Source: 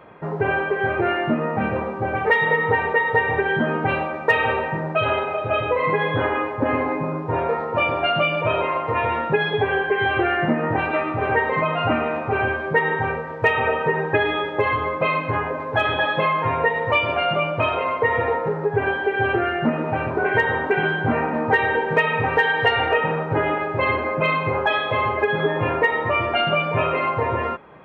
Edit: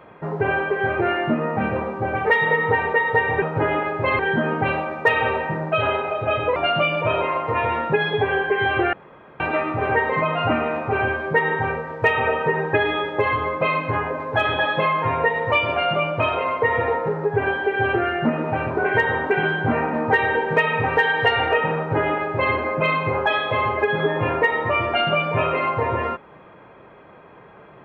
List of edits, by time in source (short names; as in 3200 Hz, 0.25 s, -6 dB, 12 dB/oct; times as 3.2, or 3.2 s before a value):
5.79–7.96 cut
10.33–10.8 room tone
23.17–23.94 copy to 3.42